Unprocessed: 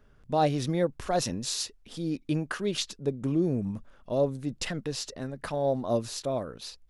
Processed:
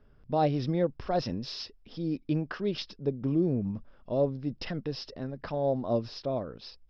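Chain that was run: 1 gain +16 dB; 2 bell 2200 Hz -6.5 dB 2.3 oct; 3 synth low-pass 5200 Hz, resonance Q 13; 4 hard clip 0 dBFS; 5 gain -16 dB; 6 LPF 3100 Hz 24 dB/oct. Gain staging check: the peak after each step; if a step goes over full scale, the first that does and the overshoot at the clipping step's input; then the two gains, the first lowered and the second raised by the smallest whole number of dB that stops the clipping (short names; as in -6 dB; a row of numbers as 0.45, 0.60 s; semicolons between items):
+2.5, +1.0, +9.0, 0.0, -16.0, -15.5 dBFS; step 1, 9.0 dB; step 1 +7 dB, step 5 -7 dB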